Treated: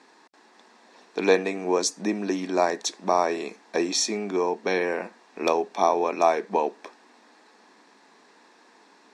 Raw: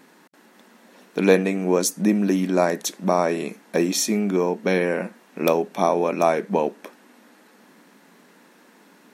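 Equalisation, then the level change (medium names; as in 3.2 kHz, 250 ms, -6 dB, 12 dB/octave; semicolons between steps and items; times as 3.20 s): cabinet simulation 470–6900 Hz, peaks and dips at 560 Hz -8 dB, 1.4 kHz -8 dB, 2.1 kHz -5 dB, 3 kHz -8 dB, 6.4 kHz -4 dB; +3.0 dB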